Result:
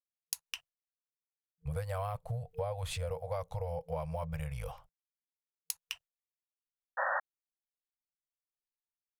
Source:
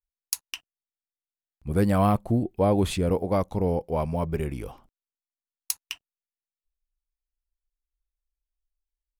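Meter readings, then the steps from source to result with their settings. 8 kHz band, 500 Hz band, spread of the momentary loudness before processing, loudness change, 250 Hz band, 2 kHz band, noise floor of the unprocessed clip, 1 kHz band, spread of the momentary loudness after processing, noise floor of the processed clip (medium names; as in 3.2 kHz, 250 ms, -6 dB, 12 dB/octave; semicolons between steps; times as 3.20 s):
-9.0 dB, -12.0 dB, 17 LU, -12.5 dB, under -20 dB, +0.5 dB, under -85 dBFS, -9.0 dB, 9 LU, under -85 dBFS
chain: expander -47 dBFS; FFT band-reject 170–460 Hz; compression 6:1, threshold -34 dBFS, peak gain reduction 15 dB; painted sound noise, 6.97–7.20 s, 510–1900 Hz -32 dBFS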